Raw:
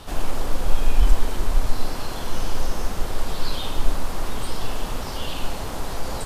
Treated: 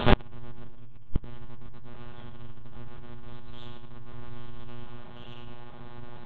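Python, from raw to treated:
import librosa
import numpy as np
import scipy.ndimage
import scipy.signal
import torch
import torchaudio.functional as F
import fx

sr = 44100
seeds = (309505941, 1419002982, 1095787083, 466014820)

p1 = fx.lpc_monotone(x, sr, seeds[0], pitch_hz=120.0, order=8)
p2 = fx.over_compress(p1, sr, threshold_db=-18.0, ratio=-0.5)
p3 = 10.0 ** (-6.0 / 20.0) * np.tanh(p2 / 10.0 ** (-6.0 / 20.0))
p4 = p3 + fx.echo_single(p3, sr, ms=114, db=-9.5, dry=0)
p5 = fx.room_shoebox(p4, sr, seeds[1], volume_m3=2600.0, walls='furnished', distance_m=1.3)
p6 = fx.gate_flip(p5, sr, shuts_db=-10.0, range_db=-31)
y = F.gain(torch.from_numpy(p6), 8.5).numpy()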